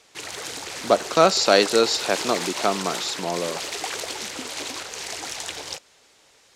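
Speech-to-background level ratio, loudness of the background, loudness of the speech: 8.5 dB, −30.0 LKFS, −21.5 LKFS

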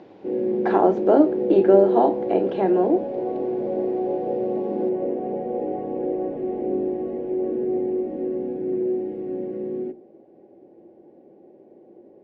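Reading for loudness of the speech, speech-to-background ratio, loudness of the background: −19.5 LKFS, 6.5 dB, −26.0 LKFS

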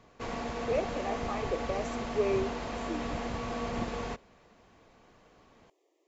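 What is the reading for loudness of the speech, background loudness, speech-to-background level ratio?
−35.5 LKFS, −36.5 LKFS, 1.0 dB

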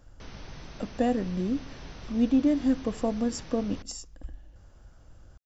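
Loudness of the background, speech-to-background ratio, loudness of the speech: −46.0 LKFS, 17.5 dB, −28.5 LKFS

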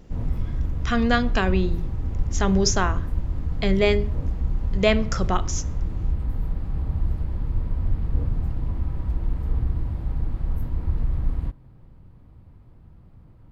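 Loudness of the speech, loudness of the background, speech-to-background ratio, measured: −24.0 LKFS, −28.5 LKFS, 4.5 dB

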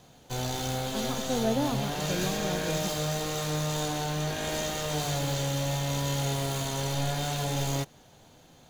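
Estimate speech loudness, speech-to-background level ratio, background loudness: −33.5 LKFS, −3.0 dB, −30.5 LKFS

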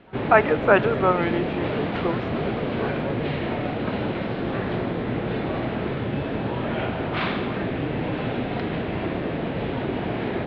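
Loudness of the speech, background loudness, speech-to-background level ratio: −22.5 LKFS, −27.0 LKFS, 4.5 dB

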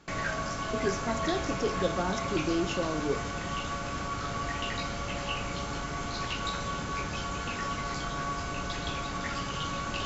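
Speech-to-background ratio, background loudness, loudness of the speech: 0.5 dB, −33.5 LKFS, −33.0 LKFS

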